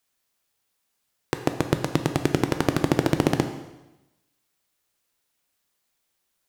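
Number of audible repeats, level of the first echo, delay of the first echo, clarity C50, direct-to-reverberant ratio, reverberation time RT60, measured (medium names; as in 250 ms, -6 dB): no echo, no echo, no echo, 9.5 dB, 7.0 dB, 1.0 s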